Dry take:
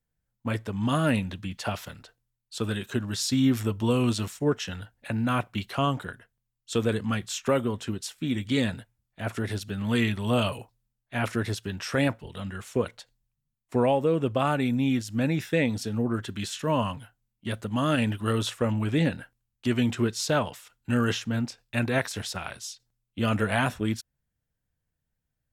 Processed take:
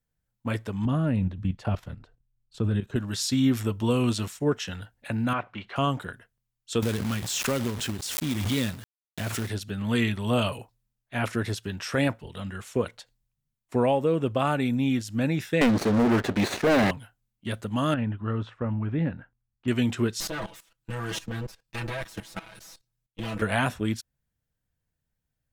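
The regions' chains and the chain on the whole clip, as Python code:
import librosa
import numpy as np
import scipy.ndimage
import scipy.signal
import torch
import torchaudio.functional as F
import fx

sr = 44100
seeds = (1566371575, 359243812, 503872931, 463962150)

y = fx.chain(x, sr, fx.tilt_eq(slope=-3.5),
    fx.level_steps(step_db=12), at=(0.85, 2.96))
y = fx.chain(y, sr, fx.law_mismatch(coded='mu'),
    fx.lowpass(hz=2200.0, slope=12),
    fx.low_shelf(hz=320.0, db=-12.0), at=(5.33, 5.76))
y = fx.chain(y, sr, fx.peak_eq(hz=830.0, db=-6.5, octaves=2.8),
    fx.quant_companded(bits=4),
    fx.pre_swell(db_per_s=31.0), at=(6.82, 9.5))
y = fx.chain(y, sr, fx.lower_of_two(delay_ms=0.48),
    fx.bandpass_q(hz=650.0, q=0.67),
    fx.leveller(passes=5), at=(15.61, 16.91))
y = fx.chain(y, sr, fx.lowpass(hz=1300.0, slope=12),
    fx.peak_eq(hz=500.0, db=-6.5, octaves=1.9), at=(17.94, 19.68))
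y = fx.chain(y, sr, fx.lower_of_two(delay_ms=9.3),
    fx.comb(ms=6.1, depth=0.82),
    fx.level_steps(step_db=16), at=(20.2, 23.42))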